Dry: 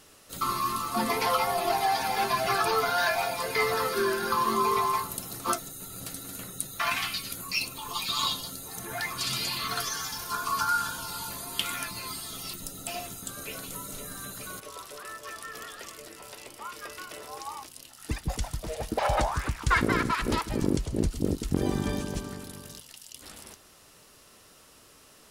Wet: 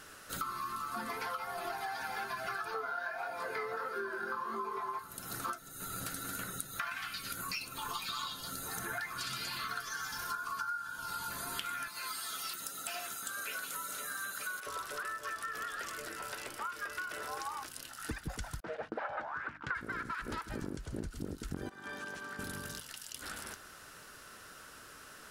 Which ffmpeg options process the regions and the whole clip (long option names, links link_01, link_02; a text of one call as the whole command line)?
ffmpeg -i in.wav -filter_complex "[0:a]asettb=1/sr,asplit=3[link_01][link_02][link_03];[link_01]atrim=end=2.744[link_04];[link_02]atrim=start=2.74:end=4.99,asetpts=PTS-STARTPTS,afade=type=in:duration=0.004:curve=qsin,afade=type=out:start_time=2.246:duration=0.004:curve=qsin,equalizer=frequency=560:width=0.35:gain=11.5,flanger=delay=17.5:depth=5.7:speed=1.6[link_05];[link_03]atrim=start=4.986[link_06];[link_04][link_05]acrossfade=duration=0.004:curve1=hsin:curve2=qsin[link_07];[link_07][link_06]acrossfade=duration=0.004:curve1=qsin:curve2=hsin,asettb=1/sr,asplit=3[link_08][link_09][link_10];[link_08]atrim=end=11.884[link_11];[link_09]atrim=start=11.88:end=14.67,asetpts=PTS-STARTPTS,afade=type=in:duration=0.004:curve=qsin,afade=type=out:start_time=2.786:duration=0.004:curve=qsin,highpass=frequency=880:poles=1,aeval=exprs='(tanh(12.6*val(0)+0.1)-tanh(0.1))/12.6':channel_layout=same[link_12];[link_10]atrim=start=14.666[link_13];[link_11][link_12]acrossfade=duration=0.004:curve1=hsin:curve2=qsin[link_14];[link_14][link_13]acrossfade=duration=0.004:curve1=qsin:curve2=hsin,asettb=1/sr,asplit=3[link_15][link_16][link_17];[link_15]atrim=end=18.604[link_18];[link_16]atrim=start=18.6:end=19.75,asetpts=PTS-STARTPTS,afade=type=in:duration=0.004:curve=qsin,afade=type=out:start_time=1.146:duration=0.004:curve=qsin,agate=range=-30dB:threshold=-39dB:ratio=16:release=100:detection=peak,highpass=220,lowpass=2400,bandreject=frequency=50:width_type=h:width=6,bandreject=frequency=100:width_type=h:width=6,bandreject=frequency=150:width_type=h:width=6,bandreject=frequency=200:width_type=h:width=6,bandreject=frequency=250:width_type=h:width=6,bandreject=frequency=300:width_type=h:width=6[link_19];[link_17]atrim=start=19.746[link_20];[link_18][link_19]acrossfade=duration=0.004:curve1=hsin:curve2=qsin[link_21];[link_21][link_20]acrossfade=duration=0.004:curve1=qsin:curve2=hsin,asettb=1/sr,asplit=3[link_22][link_23][link_24];[link_22]atrim=end=21.694[link_25];[link_23]atrim=start=21.69:end=22.39,asetpts=PTS-STARTPTS,afade=type=in:duration=0.004:curve=qsin,afade=type=out:start_time=0.696:duration=0.004:curve=qsin,highshelf=frequency=3400:gain=-11,acompressor=threshold=-33dB:ratio=2:attack=3.2:release=140:knee=1:detection=peak,highpass=frequency=1300:poles=1[link_26];[link_24]atrim=start=22.386[link_27];[link_25][link_26]acrossfade=duration=0.004:curve1=hsin:curve2=qsin[link_28];[link_28][link_27]acrossfade=duration=0.004:curve1=qsin:curve2=hsin,equalizer=frequency=1500:width=2.8:gain=14,acompressor=threshold=-36dB:ratio=12" out.wav